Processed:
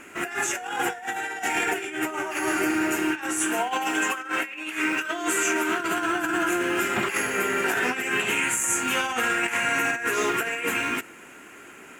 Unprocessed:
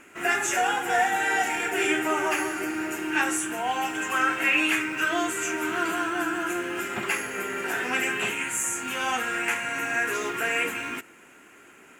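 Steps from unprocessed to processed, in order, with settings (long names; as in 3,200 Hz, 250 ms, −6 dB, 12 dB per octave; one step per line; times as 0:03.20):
0:03.43–0:05.80: high-pass filter 200 Hz 12 dB per octave
compressor whose output falls as the input rises −29 dBFS, ratio −0.5
level +3.5 dB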